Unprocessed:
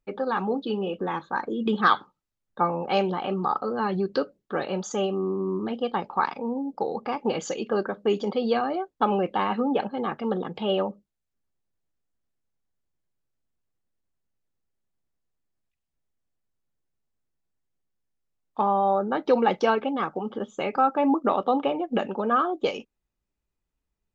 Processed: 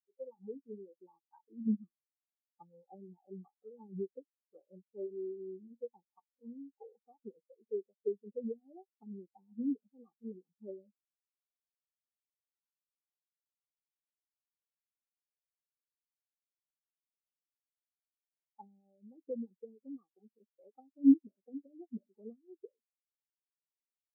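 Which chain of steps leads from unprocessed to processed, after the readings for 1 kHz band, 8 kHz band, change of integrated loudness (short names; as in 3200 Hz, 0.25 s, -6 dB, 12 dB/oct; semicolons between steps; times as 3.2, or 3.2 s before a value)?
-39.5 dB, n/a, -12.0 dB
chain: treble ducked by the level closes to 330 Hz, closed at -19.5 dBFS; spectral expander 4:1; gain -2.5 dB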